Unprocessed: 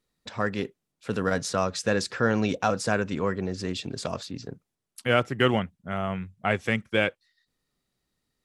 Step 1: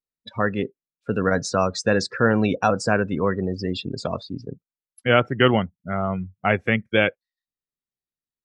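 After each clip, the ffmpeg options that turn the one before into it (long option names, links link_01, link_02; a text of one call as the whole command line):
ffmpeg -i in.wav -af "afftdn=noise_reduction=27:noise_floor=-35,volume=5dB" out.wav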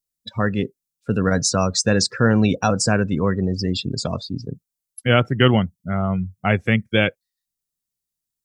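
ffmpeg -i in.wav -af "bass=frequency=250:gain=8,treble=frequency=4000:gain=14,volume=-1dB" out.wav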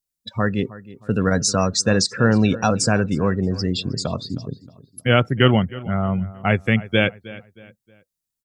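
ffmpeg -i in.wav -filter_complex "[0:a]asplit=2[link_01][link_02];[link_02]adelay=314,lowpass=frequency=3500:poles=1,volume=-18dB,asplit=2[link_03][link_04];[link_04]adelay=314,lowpass=frequency=3500:poles=1,volume=0.38,asplit=2[link_05][link_06];[link_06]adelay=314,lowpass=frequency=3500:poles=1,volume=0.38[link_07];[link_01][link_03][link_05][link_07]amix=inputs=4:normalize=0" out.wav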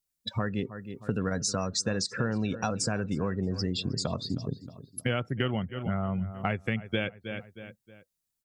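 ffmpeg -i in.wav -af "acompressor=threshold=-27dB:ratio=5" out.wav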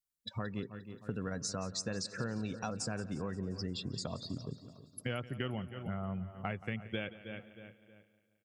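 ffmpeg -i in.wav -af "aecho=1:1:176|352|528|704|880|1056:0.141|0.0848|0.0509|0.0305|0.0183|0.011,volume=-8.5dB" out.wav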